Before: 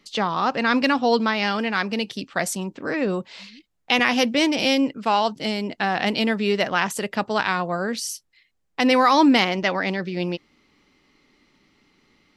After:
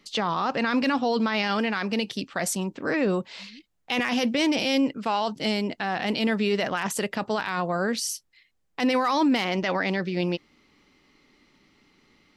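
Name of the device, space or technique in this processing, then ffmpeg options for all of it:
clipper into limiter: -af "asoftclip=type=hard:threshold=-7.5dB,alimiter=limit=-15.5dB:level=0:latency=1:release=20"

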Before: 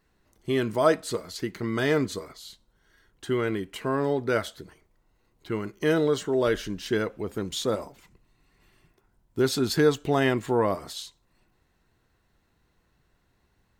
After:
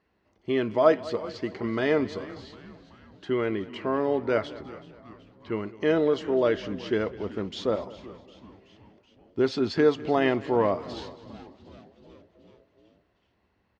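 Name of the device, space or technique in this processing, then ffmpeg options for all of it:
frequency-shifting delay pedal into a guitar cabinet: -filter_complex "[0:a]asplit=7[link_01][link_02][link_03][link_04][link_05][link_06][link_07];[link_02]adelay=377,afreqshift=-130,volume=-18dB[link_08];[link_03]adelay=754,afreqshift=-260,volume=-21.9dB[link_09];[link_04]adelay=1131,afreqshift=-390,volume=-25.8dB[link_10];[link_05]adelay=1508,afreqshift=-520,volume=-29.6dB[link_11];[link_06]adelay=1885,afreqshift=-650,volume=-33.5dB[link_12];[link_07]adelay=2262,afreqshift=-780,volume=-37.4dB[link_13];[link_01][link_08][link_09][link_10][link_11][link_12][link_13]amix=inputs=7:normalize=0,highpass=81,equalizer=frequency=140:width_type=q:width=4:gain=-9,equalizer=frequency=610:width_type=q:width=4:gain=3,equalizer=frequency=1500:width_type=q:width=4:gain=-4,equalizer=frequency=3800:width_type=q:width=4:gain=-7,lowpass=frequency=4500:width=0.5412,lowpass=frequency=4500:width=1.3066,aecho=1:1:205|410|615|820:0.112|0.0606|0.0327|0.0177"

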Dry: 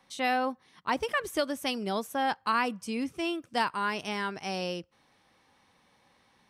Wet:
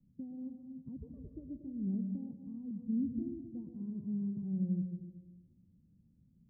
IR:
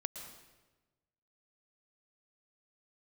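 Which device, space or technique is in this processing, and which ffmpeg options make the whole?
club heard from the street: -filter_complex "[0:a]alimiter=limit=-24dB:level=0:latency=1:release=416,lowpass=frequency=200:width=0.5412,lowpass=frequency=200:width=1.3066[link_01];[1:a]atrim=start_sample=2205[link_02];[link_01][link_02]afir=irnorm=-1:irlink=0,asettb=1/sr,asplit=3[link_03][link_04][link_05];[link_03]atrim=end=1.944[link_06];[link_04]atrim=start=1.94:end=2.71,asetpts=PTS-STARTPTS,afade=type=in:duration=0.004:curve=qsin,afade=type=out:start_time=0.766:duration=0.004:curve=qsin,lowpass=frequency=1200:width=0.5412,lowpass=frequency=1200:width=1.3066[link_07];[link_05]atrim=start=2.706[link_08];[link_06][link_07]acrossfade=duration=0.004:curve1=hsin:curve2=qsin[link_09];[link_09][link_08]acrossfade=duration=0.004:curve1=qsin:curve2=hsin,volume=9.5dB"

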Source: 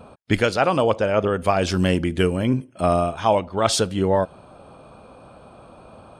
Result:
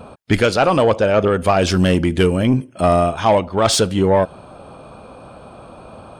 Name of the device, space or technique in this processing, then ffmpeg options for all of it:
saturation between pre-emphasis and de-emphasis: -af "highshelf=frequency=4500:gain=6.5,asoftclip=type=tanh:threshold=-12dB,highshelf=frequency=4500:gain=-6.5,volume=6.5dB"

